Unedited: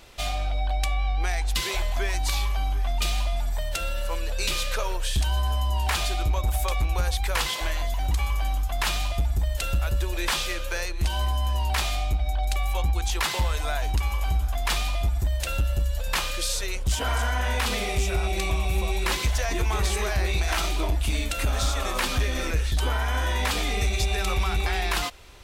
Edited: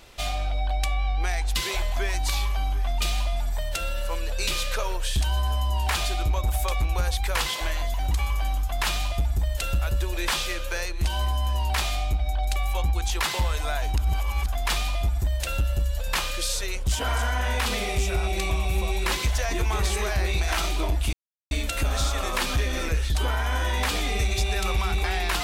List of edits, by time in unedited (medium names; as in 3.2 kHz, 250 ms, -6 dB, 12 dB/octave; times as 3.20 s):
13.98–14.46 s: reverse
21.13 s: insert silence 0.38 s